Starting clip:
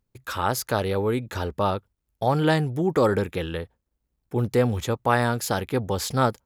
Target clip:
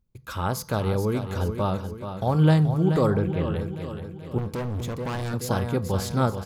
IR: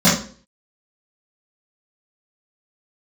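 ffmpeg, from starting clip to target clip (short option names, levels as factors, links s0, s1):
-filter_complex "[0:a]lowshelf=f=200:g=11.5,bandreject=f=1800:w=12,aecho=1:1:430|860|1290|1720|2150|2580:0.355|0.177|0.0887|0.0444|0.0222|0.0111,asettb=1/sr,asplit=3[s0][s1][s2];[s0]atrim=end=3.104[s3];[s1]atrim=start=3.1:end=3.56,asetpts=PTS-STARTPTS,afade=t=in:d=0.004:c=qsin,afade=t=out:st=0.456:d=0.004:c=qsin,acrossover=split=3300[s4][s5];[s5]acompressor=threshold=0.00158:ratio=4:attack=1:release=60[s6];[s4][s6]amix=inputs=2:normalize=0[s7];[s2]atrim=start=3.556[s8];[s3][s7]acrossfade=d=0.004:c1=hsin:c2=qsin[s9];[s9][s8]acrossfade=d=0.004:c1=qsin:c2=hsin,asettb=1/sr,asplit=3[s10][s11][s12];[s10]atrim=end=4.384[s13];[s11]atrim=start=4.38:end=5.34,asetpts=PTS-STARTPTS,afade=t=in:d=0.004:c=qsin,afade=t=out:st=0.956:d=0.004:c=qsin,volume=12.6,asoftclip=hard,volume=0.0794[s14];[s12]atrim=start=5.336[s15];[s13][s14]acrossfade=d=0.004:c1=hsin:c2=qsin[s16];[s16][s15]acrossfade=d=0.004:c1=qsin:c2=hsin,asplit=2[s17][s18];[s18]equalizer=f=1100:w=7.4:g=13.5[s19];[1:a]atrim=start_sample=2205,asetrate=38367,aresample=44100,highshelf=f=7700:g=11.5[s20];[s19][s20]afir=irnorm=-1:irlink=0,volume=0.00794[s21];[s17][s21]amix=inputs=2:normalize=0,volume=0.562"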